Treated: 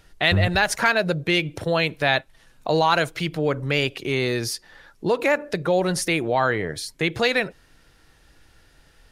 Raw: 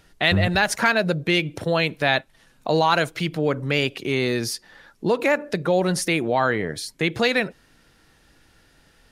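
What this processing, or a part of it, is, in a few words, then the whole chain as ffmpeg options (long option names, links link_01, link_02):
low shelf boost with a cut just above: -af "lowshelf=frequency=64:gain=7,equalizer=frequency=220:width_type=o:width=0.69:gain=-5"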